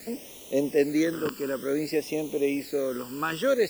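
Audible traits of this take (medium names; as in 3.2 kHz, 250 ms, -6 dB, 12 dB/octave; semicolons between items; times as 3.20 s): a quantiser's noise floor 8-bit, dither triangular; phasing stages 12, 0.55 Hz, lowest notch 660–1600 Hz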